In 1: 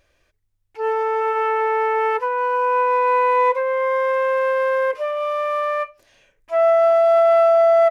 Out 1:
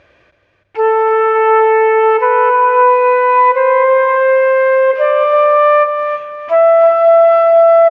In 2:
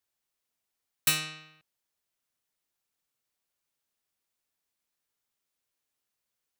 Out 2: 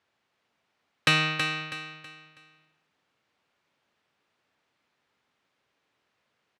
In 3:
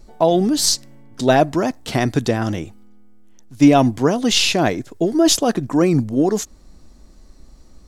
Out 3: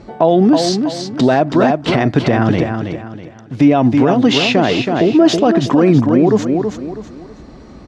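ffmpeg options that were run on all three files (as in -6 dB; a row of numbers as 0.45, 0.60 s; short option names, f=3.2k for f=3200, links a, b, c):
-filter_complex "[0:a]acompressor=threshold=-30dB:ratio=2,highpass=100,lowpass=2.7k,asplit=2[a][b];[b]aecho=0:1:324|648|972|1296:0.447|0.147|0.0486|0.0161[c];[a][c]amix=inputs=2:normalize=0,alimiter=level_in=17dB:limit=-1dB:release=50:level=0:latency=1,volume=-1dB"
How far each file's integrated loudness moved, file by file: +8.0, +2.5, +4.0 LU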